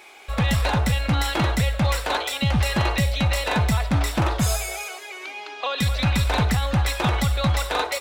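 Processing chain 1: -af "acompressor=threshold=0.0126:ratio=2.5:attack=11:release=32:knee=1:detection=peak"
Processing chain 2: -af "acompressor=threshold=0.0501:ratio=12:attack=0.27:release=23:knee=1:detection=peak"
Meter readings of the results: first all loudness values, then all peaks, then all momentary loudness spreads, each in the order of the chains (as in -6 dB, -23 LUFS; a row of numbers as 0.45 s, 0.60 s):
-33.0 LUFS, -31.0 LUFS; -20.5 dBFS, -22.5 dBFS; 3 LU, 2 LU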